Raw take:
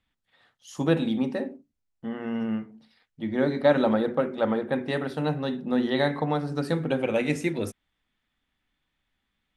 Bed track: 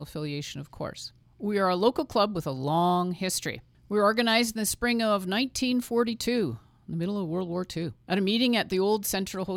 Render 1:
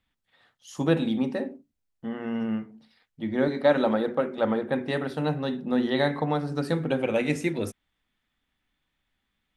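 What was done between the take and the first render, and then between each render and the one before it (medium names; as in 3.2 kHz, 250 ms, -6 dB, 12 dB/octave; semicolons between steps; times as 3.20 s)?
3.48–4.38 s: bass shelf 110 Hz -11.5 dB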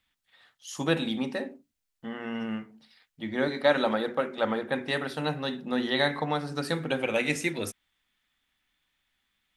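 tilt shelf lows -5.5 dB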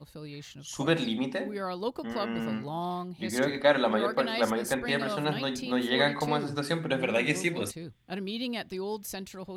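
add bed track -9.5 dB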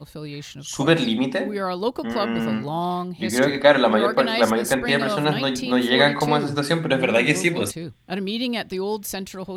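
trim +8.5 dB; peak limiter -1 dBFS, peak gain reduction 1 dB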